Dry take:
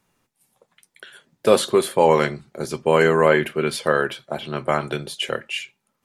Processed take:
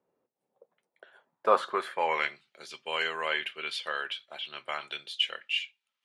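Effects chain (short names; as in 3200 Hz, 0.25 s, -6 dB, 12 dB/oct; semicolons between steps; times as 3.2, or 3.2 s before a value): dynamic EQ 800 Hz, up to +4 dB, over -28 dBFS, Q 0.87; band-pass sweep 490 Hz -> 3100 Hz, 0.74–2.45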